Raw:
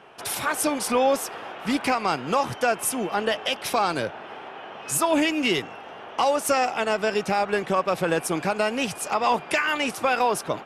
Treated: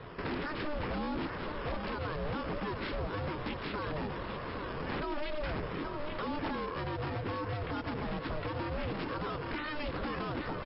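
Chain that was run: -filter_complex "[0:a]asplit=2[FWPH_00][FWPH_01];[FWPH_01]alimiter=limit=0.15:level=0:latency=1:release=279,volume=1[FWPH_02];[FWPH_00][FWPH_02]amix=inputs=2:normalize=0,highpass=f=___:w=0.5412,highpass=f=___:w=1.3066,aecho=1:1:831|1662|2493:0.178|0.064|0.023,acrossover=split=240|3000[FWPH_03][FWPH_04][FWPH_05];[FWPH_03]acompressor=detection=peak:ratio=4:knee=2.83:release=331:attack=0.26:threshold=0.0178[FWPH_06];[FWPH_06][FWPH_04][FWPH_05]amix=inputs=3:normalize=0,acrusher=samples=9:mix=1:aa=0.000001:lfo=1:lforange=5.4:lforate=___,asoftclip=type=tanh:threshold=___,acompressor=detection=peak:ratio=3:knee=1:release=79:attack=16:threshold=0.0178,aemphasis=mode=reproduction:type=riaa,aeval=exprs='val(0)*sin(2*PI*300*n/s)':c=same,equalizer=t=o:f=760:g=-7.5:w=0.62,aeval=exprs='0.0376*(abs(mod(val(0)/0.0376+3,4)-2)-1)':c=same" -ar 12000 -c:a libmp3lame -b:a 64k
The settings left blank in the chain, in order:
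70, 70, 1.3, 0.211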